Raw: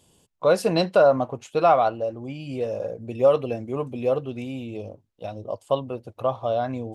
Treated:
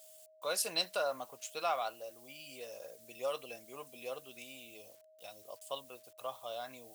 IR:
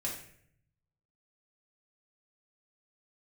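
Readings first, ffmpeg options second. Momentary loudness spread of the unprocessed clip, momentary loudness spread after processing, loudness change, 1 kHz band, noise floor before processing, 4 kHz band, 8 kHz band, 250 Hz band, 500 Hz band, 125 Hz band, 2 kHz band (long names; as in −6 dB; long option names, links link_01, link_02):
17 LU, 18 LU, −16.0 dB, −15.5 dB, −63 dBFS, −2.5 dB, can't be measured, −26.0 dB, −19.5 dB, −31.5 dB, −9.5 dB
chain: -af "acrusher=bits=9:mix=0:aa=0.000001,aeval=exprs='val(0)+0.00794*sin(2*PI*630*n/s)':channel_layout=same,aderivative,volume=2.5dB"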